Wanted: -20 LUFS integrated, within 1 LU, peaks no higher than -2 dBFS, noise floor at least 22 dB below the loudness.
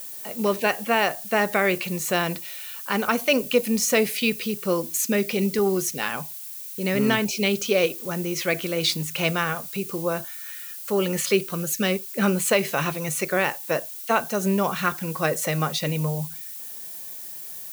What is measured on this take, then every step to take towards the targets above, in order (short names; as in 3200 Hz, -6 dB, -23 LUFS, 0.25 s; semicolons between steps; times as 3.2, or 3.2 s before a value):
noise floor -37 dBFS; noise floor target -47 dBFS; loudness -24.5 LUFS; peak -7.0 dBFS; loudness target -20.0 LUFS
-> noise print and reduce 10 dB; gain +4.5 dB